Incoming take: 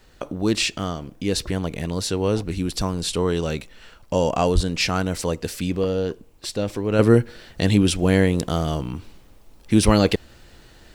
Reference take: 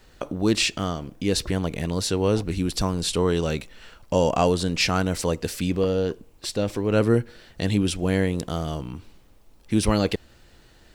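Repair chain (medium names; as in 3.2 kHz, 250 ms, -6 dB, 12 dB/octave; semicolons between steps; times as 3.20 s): 4.54–4.66 s: high-pass 140 Hz 24 dB/octave; trim 0 dB, from 6.99 s -5 dB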